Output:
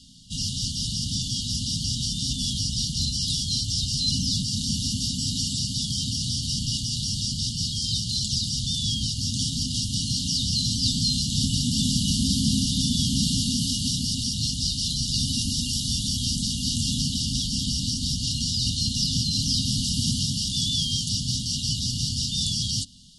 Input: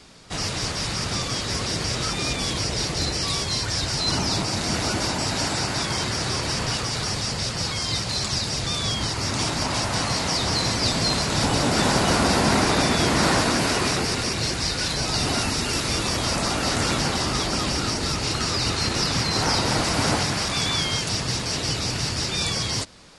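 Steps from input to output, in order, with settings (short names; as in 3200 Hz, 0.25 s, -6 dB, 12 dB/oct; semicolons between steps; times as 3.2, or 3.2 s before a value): FFT band-reject 270–2800 Hz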